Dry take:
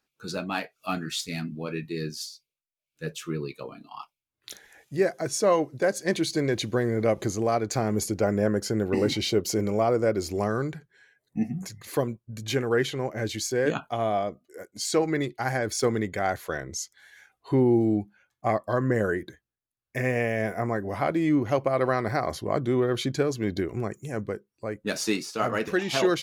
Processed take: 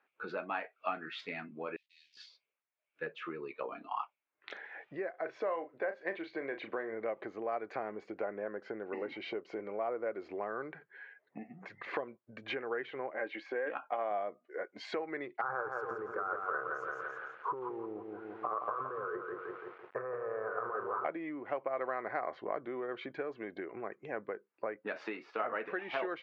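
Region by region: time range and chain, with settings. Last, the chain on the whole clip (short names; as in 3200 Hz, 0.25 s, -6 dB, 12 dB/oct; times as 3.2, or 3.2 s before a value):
1.76–2.17 level-crossing sampler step -38.5 dBFS + inverse Chebyshev high-pass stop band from 1300 Hz, stop band 60 dB + doubler 20 ms -11.5 dB
5.1–6.93 LPF 4800 Hz + low shelf 180 Hz -10 dB + doubler 36 ms -10.5 dB
13.15–14.11 LPF 6500 Hz + tone controls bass -11 dB, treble -10 dB + comb 3.7 ms, depth 36%
15.41–21.05 EQ curve 120 Hz 0 dB, 260 Hz -16 dB, 450 Hz +4 dB, 660 Hz -12 dB, 1300 Hz +14 dB, 2000 Hz -27 dB, 3600 Hz -26 dB, 11000 Hz +11 dB + negative-ratio compressor -31 dBFS + lo-fi delay 0.169 s, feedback 55%, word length 9-bit, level -5 dB
whole clip: LPF 2300 Hz 24 dB/oct; compressor 6:1, threshold -39 dBFS; HPF 500 Hz 12 dB/oct; gain +7.5 dB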